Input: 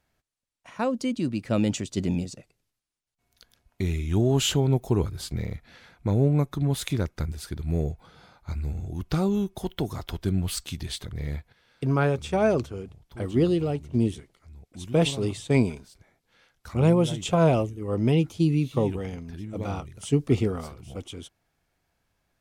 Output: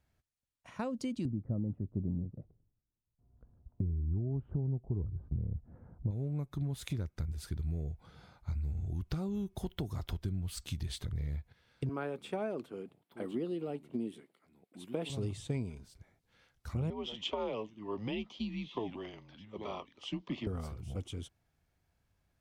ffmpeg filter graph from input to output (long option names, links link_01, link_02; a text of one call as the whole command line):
ffmpeg -i in.wav -filter_complex "[0:a]asettb=1/sr,asplit=3[link_01][link_02][link_03];[link_01]atrim=end=1.254[link_04];[link_02]atrim=start=1.25:end=6.11,asetpts=PTS-STARTPTS,afade=type=in:duration=0.004:curve=qsin,afade=type=out:start_time=4.856:duration=0.004:curve=qsin,lowpass=frequency=1200:width=0.5412,lowpass=frequency=1200:width=1.3066,tiltshelf=frequency=700:gain=8.5[link_05];[link_03]atrim=start=6.106[link_06];[link_04][link_05]acrossfade=duration=0.004:curve1=hsin:curve2=qsin[link_07];[link_07][link_06]acrossfade=duration=0.004:curve1=qsin:curve2=hsin,asettb=1/sr,asplit=3[link_08][link_09][link_10];[link_08]atrim=end=11.894[link_11];[link_09]atrim=start=11.89:end=15.1,asetpts=PTS-STARTPTS,afade=type=in:duration=0.004:curve=qsin,afade=type=out:start_time=3.206:duration=0.004:curve=qsin,highpass=frequency=220:width=0.5412,highpass=frequency=220:width=1.3066,equalizer=frequency=6100:width_type=o:width=0.69:gain=-12.5[link_12];[link_10]atrim=start=15.096[link_13];[link_11][link_12]acrossfade=duration=0.004:curve1=hsin:curve2=qsin[link_14];[link_14][link_13]acrossfade=duration=0.004:curve1=qsin:curve2=hsin,asettb=1/sr,asplit=3[link_15][link_16][link_17];[link_15]atrim=end=16.904[link_18];[link_16]atrim=start=16.9:end=20.47,asetpts=PTS-STARTPTS,afade=type=in:duration=0.004:curve=qsin,afade=type=out:start_time=3.566:duration=0.004:curve=qsin,highpass=frequency=380:width=0.5412,highpass=frequency=380:width=1.3066,equalizer=frequency=430:width_type=q:width=4:gain=-3,equalizer=frequency=1100:width_type=q:width=4:gain=7,equalizer=frequency=1600:width_type=q:width=4:gain=-5,equalizer=frequency=3300:width_type=q:width=4:gain=8,lowpass=frequency=5000:width=0.5412,lowpass=frequency=5000:width=1.3066,afreqshift=-110[link_19];[link_17]atrim=start=20.466[link_20];[link_18][link_19]acrossfade=duration=0.004:curve1=hsin:curve2=qsin[link_21];[link_21][link_20]acrossfade=duration=0.004:curve1=qsin:curve2=hsin,equalizer=frequency=75:width_type=o:width=2.6:gain=9.5,acompressor=threshold=-26dB:ratio=6,volume=-7dB" out.wav